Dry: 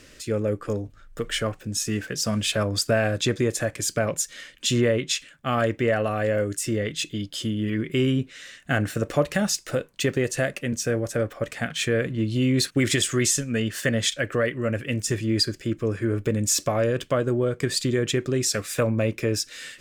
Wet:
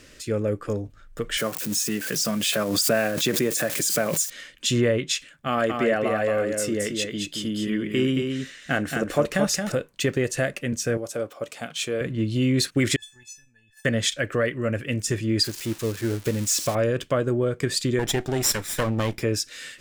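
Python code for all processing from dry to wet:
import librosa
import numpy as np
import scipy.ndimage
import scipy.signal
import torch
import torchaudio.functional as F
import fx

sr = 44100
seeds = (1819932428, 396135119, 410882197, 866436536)

y = fx.chain(x, sr, fx.crossing_spikes(level_db=-27.5),
    fx.cheby1_highpass(hz=160.0, order=3),
    fx.pre_swell(db_per_s=46.0), at=(1.37, 4.3))
y = fx.chain(y, sr, fx.peak_eq(hz=110.0, db=-10.5, octaves=0.45),
    fx.echo_single(ms=223, db=-5.0), at=(5.47, 9.72))
y = fx.chain(y, sr, fx.highpass(hz=460.0, slope=6),
    fx.peak_eq(hz=1800.0, db=-11.5, octaves=0.55), at=(10.97, 12.01))
y = fx.chain(y, sr, fx.level_steps(step_db=11),
    fx.comb_fb(f0_hz=870.0, decay_s=0.23, harmonics='all', damping=0.0, mix_pct=100), at=(12.96, 13.85))
y = fx.chain(y, sr, fx.crossing_spikes(level_db=-17.0),
    fx.high_shelf(hz=10000.0, db=-11.5),
    fx.upward_expand(threshold_db=-34.0, expansion=1.5), at=(15.44, 16.75))
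y = fx.chain(y, sr, fx.lower_of_two(delay_ms=0.54),
    fx.high_shelf(hz=4500.0, db=5.5), at=(17.99, 19.23))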